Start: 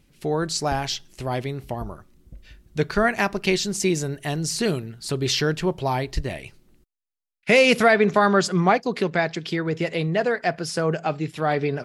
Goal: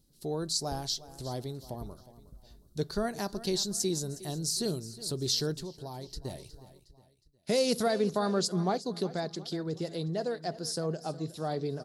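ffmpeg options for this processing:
ffmpeg -i in.wav -filter_complex "[0:a]firequalizer=gain_entry='entry(380,0);entry(2400,-17);entry(4000,6);entry(6900,4);entry(9900,8)':delay=0.05:min_phase=1,aecho=1:1:363|726|1089:0.15|0.0598|0.0239,asettb=1/sr,asplit=3[link_01][link_02][link_03];[link_01]atrim=end=5.534[link_04];[link_02]atrim=start=5.53:end=6.25,asetpts=PTS-STARTPTS,afade=type=in:duration=0.004:curve=qsin,afade=type=out:start_time=0.716:duration=0.004:curve=qsin,acompressor=threshold=-29dB:ratio=6[link_05];[link_03]atrim=start=6.246[link_06];[link_04][link_05]acrossfade=duration=0.004:curve1=hsin:curve2=qsin[link_07];[link_07][link_06]acrossfade=duration=0.004:curve1=qsin:curve2=hsin,volume=-9dB" out.wav

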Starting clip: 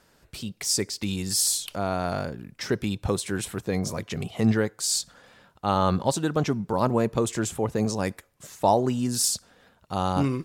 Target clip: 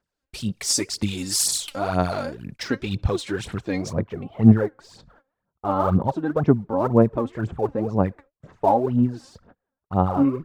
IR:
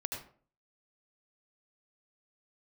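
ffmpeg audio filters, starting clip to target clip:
-af "agate=range=-26dB:threshold=-47dB:ratio=16:detection=peak,asetnsamples=nb_out_samples=441:pad=0,asendcmd='2.63 lowpass f 4700;3.93 lowpass f 1200',lowpass=11000,aphaser=in_gain=1:out_gain=1:delay=3.8:decay=0.69:speed=2:type=sinusoidal"

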